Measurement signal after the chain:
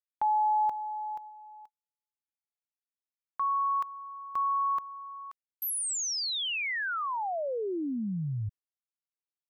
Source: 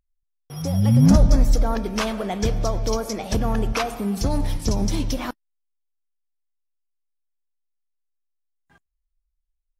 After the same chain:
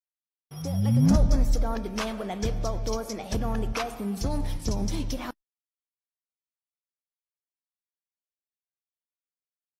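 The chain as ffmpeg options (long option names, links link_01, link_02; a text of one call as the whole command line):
ffmpeg -i in.wav -af "agate=range=-50dB:threshold=-40dB:ratio=16:detection=peak,volume=-6dB" out.wav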